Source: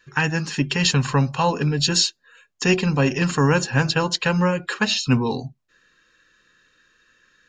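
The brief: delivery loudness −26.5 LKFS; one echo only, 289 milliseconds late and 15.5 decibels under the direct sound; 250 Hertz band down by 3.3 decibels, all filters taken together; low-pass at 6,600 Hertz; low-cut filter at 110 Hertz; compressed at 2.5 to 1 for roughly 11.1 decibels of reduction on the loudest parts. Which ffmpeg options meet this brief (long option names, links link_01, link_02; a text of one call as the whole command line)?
ffmpeg -i in.wav -af "highpass=110,lowpass=6600,equalizer=frequency=250:width_type=o:gain=-4.5,acompressor=threshold=-33dB:ratio=2.5,aecho=1:1:289:0.168,volume=5.5dB" out.wav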